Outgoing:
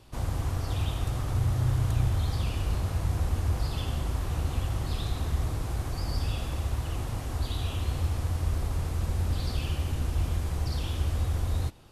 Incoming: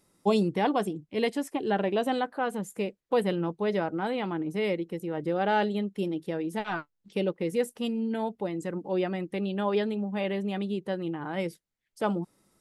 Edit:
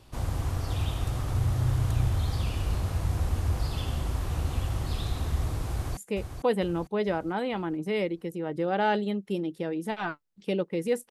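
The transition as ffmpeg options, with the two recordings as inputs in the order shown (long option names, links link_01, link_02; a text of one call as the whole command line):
ffmpeg -i cue0.wav -i cue1.wav -filter_complex "[0:a]apad=whole_dur=11.1,atrim=end=11.1,atrim=end=5.972[link_01];[1:a]atrim=start=2.648:end=7.78[link_02];[link_01][link_02]acrossfade=duration=0.004:curve1=hsin:curve2=hsin,asplit=2[link_03][link_04];[link_04]afade=type=in:start_time=5.71:duration=0.01,afade=type=out:start_time=5.97:duration=0.01,aecho=0:1:450|900|1350|1800|2250:0.446684|0.201008|0.0904534|0.040704|0.0183168[link_05];[link_03][link_05]amix=inputs=2:normalize=0" out.wav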